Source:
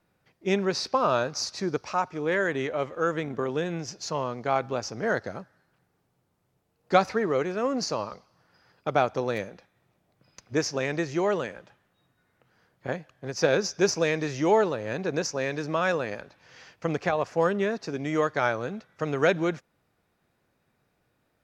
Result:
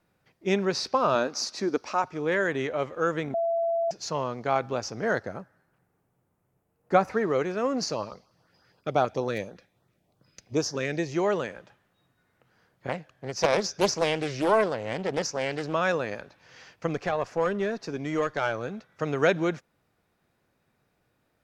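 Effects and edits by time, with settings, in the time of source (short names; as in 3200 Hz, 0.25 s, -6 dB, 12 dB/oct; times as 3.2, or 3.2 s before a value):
1.15–2.04 resonant low shelf 190 Hz -6.5 dB, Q 3
3.34–3.91 bleep 671 Hz -23 dBFS
5.21–7.12 bell 4300 Hz -7.5 dB -> -13.5 dB 1.3 oct
7.91–11.11 LFO notch saw up 8.1 Hz -> 1.5 Hz 680–2800 Hz
12.89–15.73 Doppler distortion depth 0.58 ms
16.87–18.92 tube stage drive 15 dB, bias 0.35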